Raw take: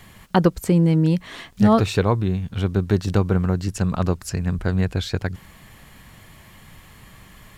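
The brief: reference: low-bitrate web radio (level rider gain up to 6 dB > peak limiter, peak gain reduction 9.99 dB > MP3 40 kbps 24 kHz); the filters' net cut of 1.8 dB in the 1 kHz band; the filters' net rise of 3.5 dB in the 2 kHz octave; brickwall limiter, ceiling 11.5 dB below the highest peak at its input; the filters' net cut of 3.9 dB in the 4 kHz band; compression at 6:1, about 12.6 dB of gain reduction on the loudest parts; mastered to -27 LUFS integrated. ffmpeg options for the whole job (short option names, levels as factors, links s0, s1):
-af "equalizer=f=1000:t=o:g=-4,equalizer=f=2000:t=o:g=8,equalizer=f=4000:t=o:g=-7.5,acompressor=threshold=0.0562:ratio=6,alimiter=limit=0.0794:level=0:latency=1,dynaudnorm=m=2,alimiter=level_in=2.51:limit=0.0631:level=0:latency=1,volume=0.398,volume=5.31" -ar 24000 -c:a libmp3lame -b:a 40k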